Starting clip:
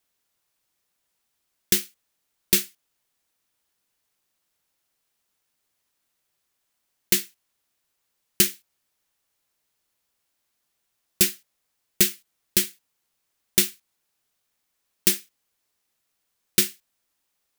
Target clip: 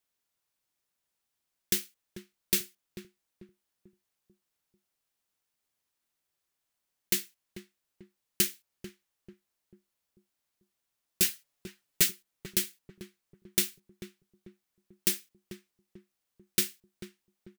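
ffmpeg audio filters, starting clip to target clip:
-filter_complex "[0:a]asettb=1/sr,asplit=3[a][b][c];[a]atrim=end=11.224[d];[b]atrim=start=11.22:end=12.11,asetpts=PTS-STARTPTS,afade=t=in:d=0.004:c=qsin,afade=t=out:st=0.886:d=0.004:c=qsin,aecho=1:1:7.1:0.94,atrim=end_sample=39249[e];[c]atrim=start=12.106[f];[d][e]acrossfade=d=0.004:c1=hsin:c2=qsin[g];[g][f]acrossfade=d=0.004:c1=qsin:c2=hsin,asplit=2[h][i];[i]adelay=442,lowpass=f=800:p=1,volume=-8dB,asplit=2[j][k];[k]adelay=442,lowpass=f=800:p=1,volume=0.45,asplit=2[l][m];[m]adelay=442,lowpass=f=800:p=1,volume=0.45,asplit=2[n][o];[o]adelay=442,lowpass=f=800:p=1,volume=0.45,asplit=2[p][q];[q]adelay=442,lowpass=f=800:p=1,volume=0.45[r];[h][j][l][n][p][r]amix=inputs=6:normalize=0,volume=-7.5dB"

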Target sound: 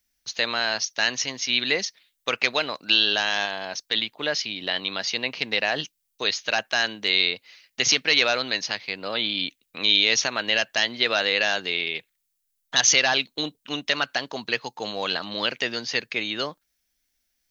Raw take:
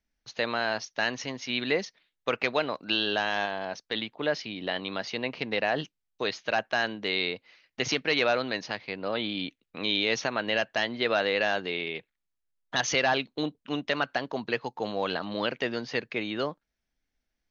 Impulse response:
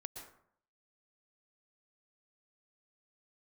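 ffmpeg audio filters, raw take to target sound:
-af "crystalizer=i=7:c=0,volume=-2dB"

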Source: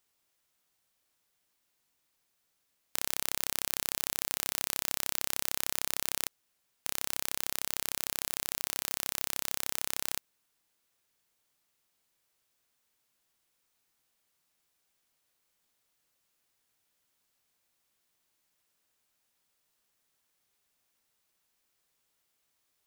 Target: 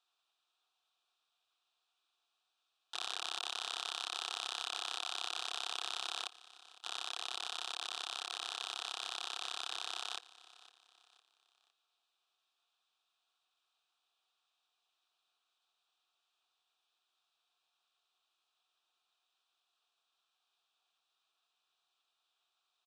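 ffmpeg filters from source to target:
-filter_complex "[0:a]asplit=3[a][b][c];[a]bandpass=f=730:t=q:w=8,volume=0dB[d];[b]bandpass=f=1.09k:t=q:w=8,volume=-6dB[e];[c]bandpass=f=2.44k:t=q:w=8,volume=-9dB[f];[d][e][f]amix=inputs=3:normalize=0,crystalizer=i=7.5:c=0,asplit=4[g][h][i][j];[h]asetrate=29433,aresample=44100,atempo=1.49831,volume=-13dB[k];[i]asetrate=52444,aresample=44100,atempo=0.840896,volume=-9dB[l];[j]asetrate=55563,aresample=44100,atempo=0.793701,volume=-6dB[m];[g][k][l][m]amix=inputs=4:normalize=0,highpass=300,equalizer=f=350:t=q:w=4:g=9,equalizer=f=550:t=q:w=4:g=-8,equalizer=f=1.3k:t=q:w=4:g=6,equalizer=f=2.2k:t=q:w=4:g=-6,equalizer=f=3.7k:t=q:w=4:g=10,equalizer=f=6.7k:t=q:w=4:g=-4,lowpass=f=8.1k:w=0.5412,lowpass=f=8.1k:w=1.3066,aecho=1:1:508|1016|1524:0.112|0.0449|0.018,volume=1.5dB"

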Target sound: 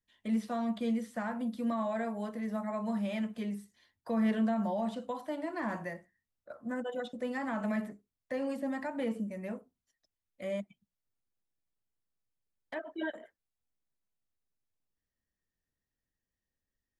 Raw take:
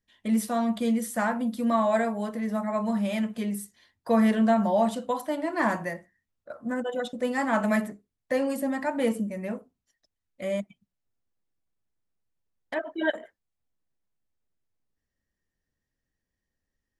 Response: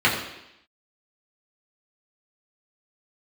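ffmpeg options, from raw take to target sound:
-filter_complex "[0:a]acrossover=split=4900[a][b];[b]acompressor=threshold=-56dB:ratio=4:attack=1:release=60[c];[a][c]amix=inputs=2:normalize=0,acrossover=split=270[d][e];[e]alimiter=limit=-21.5dB:level=0:latency=1:release=118[f];[d][f]amix=inputs=2:normalize=0,volume=-6.5dB"

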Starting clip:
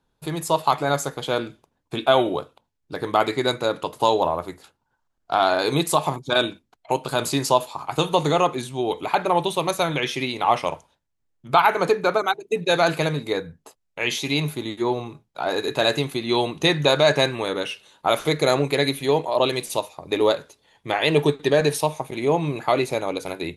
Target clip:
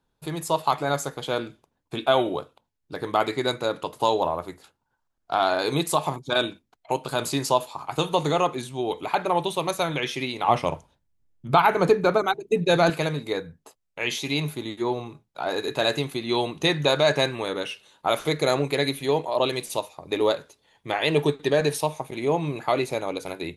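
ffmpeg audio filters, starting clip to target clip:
-filter_complex "[0:a]asettb=1/sr,asplit=3[a][b][c];[a]atrim=end=10.484[d];[b]atrim=start=10.48:end=12.9,asetpts=PTS-STARTPTS,afade=t=in:d=0.004:c=qsin,afade=t=out:st=2.416:d=0.004:c=qsin,lowshelf=f=330:g=11[e];[c]atrim=start=12.896[f];[d][e]acrossfade=d=0.004:c1=hsin:c2=qsin[g];[g][f]acrossfade=d=0.004:c1=qsin:c2=hsin,volume=-3dB"

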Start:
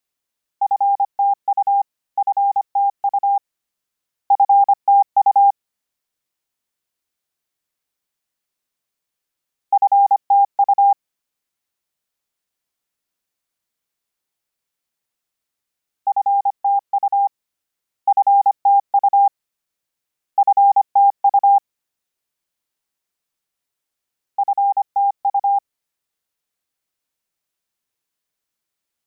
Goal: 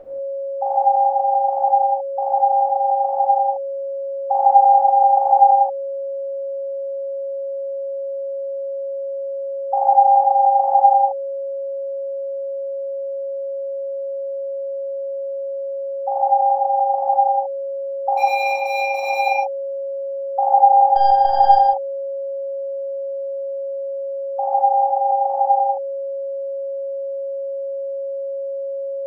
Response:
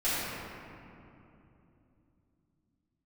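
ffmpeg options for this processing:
-filter_complex "[0:a]asplit=3[a][b][c];[a]afade=t=out:st=18.13:d=0.02[d];[b]asoftclip=type=hard:threshold=-20.5dB,afade=t=in:st=18.13:d=0.02,afade=t=out:st=19.25:d=0.02[e];[c]afade=t=in:st=19.25:d=0.02[f];[d][e][f]amix=inputs=3:normalize=0,asettb=1/sr,asplit=3[g][h][i];[g]atrim=end=20.864[j];[h]atrim=start=20.86:end=21.55,asetpts=PTS-STARTPTS,afade=t=in:d=0.004:c=qsin,afade=t=out:st=0.686:d=0.004:c=qsin,aeval=exprs='0.422*(cos(1*acos(clip(val(0)/0.422,-1,1)))-cos(1*PI/2))+0.0133*(cos(6*acos(clip(val(0)/0.422,-1,1)))-cos(6*PI/2))':c=same[k];[i]atrim=start=21.546[l];[j][k]acrossfade=d=0.004:c1=hsin:c2=qsin[m];[m][l]acrossfade=d=0.004:c1=qsin:c2=hsin,aeval=exprs='val(0)+0.0355*sin(2*PI*550*n/s)':c=same[n];[1:a]atrim=start_sample=2205,afade=t=out:st=0.24:d=0.01,atrim=end_sample=11025[o];[n][o]afir=irnorm=-1:irlink=0,volume=-5.5dB"

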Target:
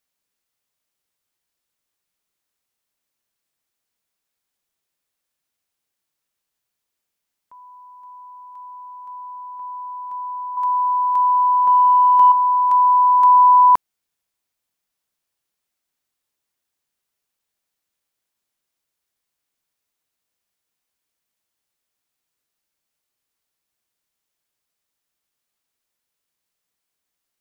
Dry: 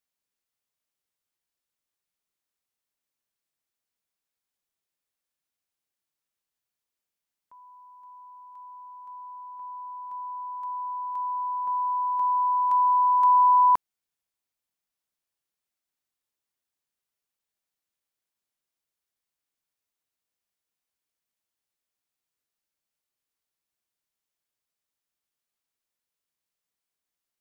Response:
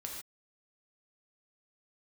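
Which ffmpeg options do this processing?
-filter_complex "[0:a]asettb=1/sr,asplit=3[a][b][c];[a]atrim=end=10.574[d];[b]atrim=start=10.57:end=12.32,asetpts=PTS-STARTPTS,afade=t=in:d=0.004:c=qsin,afade=t=out:st=1.746:d=0.004:c=qsin,acontrast=73[e];[c]atrim=start=12.316[f];[d][e]acrossfade=d=0.004:c1=hsin:c2=qsin[g];[g][f]acrossfade=d=0.004:c1=qsin:c2=hsin,volume=7dB"

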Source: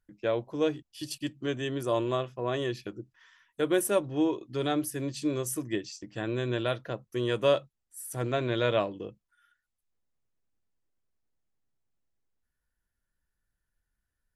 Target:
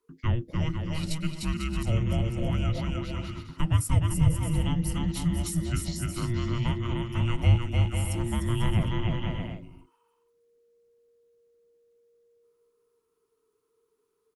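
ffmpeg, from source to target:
-filter_complex "[0:a]aecho=1:1:300|495|621.8|704.1|757.7:0.631|0.398|0.251|0.158|0.1,afreqshift=-470,acrossover=split=160[a][b];[b]acompressor=threshold=-37dB:ratio=3[c];[a][c]amix=inputs=2:normalize=0,volume=4dB"

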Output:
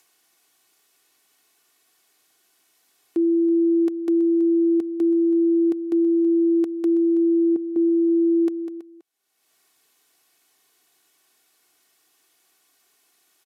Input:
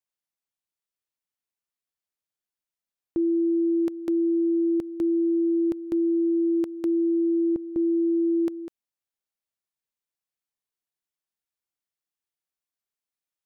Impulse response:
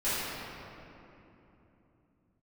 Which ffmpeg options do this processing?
-filter_complex "[0:a]highpass=f=150:w=0.5412,highpass=f=150:w=1.3066,aecho=1:1:2.7:0.63,acompressor=mode=upward:threshold=-41dB:ratio=2.5,asplit=2[a][b];[b]aecho=0:1:326:0.178[c];[a][c]amix=inputs=2:normalize=0,aresample=32000,aresample=44100"

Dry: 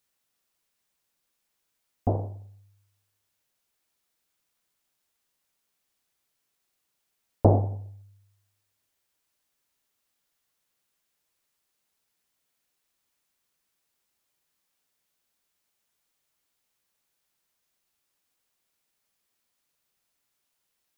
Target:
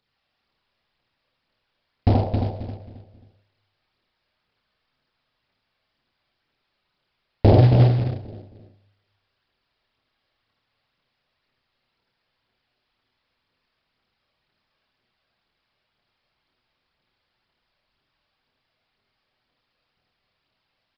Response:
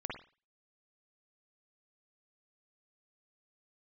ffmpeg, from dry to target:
-filter_complex "[0:a]alimiter=limit=-12dB:level=0:latency=1:release=272,aphaser=in_gain=1:out_gain=1:delay=1.9:decay=0.55:speed=2:type=triangular,asplit=2[a][b];[b]adelay=268,lowpass=f=840:p=1,volume=-5dB,asplit=2[c][d];[d]adelay=268,lowpass=f=840:p=1,volume=0.35,asplit=2[e][f];[f]adelay=268,lowpass=f=840:p=1,volume=0.35,asplit=2[g][h];[h]adelay=268,lowpass=f=840:p=1,volume=0.35[i];[a][c][e][g][i]amix=inputs=5:normalize=0,asplit=3[j][k][l];[j]afade=t=out:st=7.53:d=0.02[m];[k]afreqshift=22,afade=t=in:st=7.53:d=0.02,afade=t=out:st=8.02:d=0.02[n];[l]afade=t=in:st=8.02:d=0.02[o];[m][n][o]amix=inputs=3:normalize=0,asplit=2[p][q];[1:a]atrim=start_sample=2205,adelay=27[r];[q][r]afir=irnorm=-1:irlink=0,volume=0dB[s];[p][s]amix=inputs=2:normalize=0,acrusher=bits=5:mode=log:mix=0:aa=0.000001,aresample=11025,aresample=44100,volume=4dB"

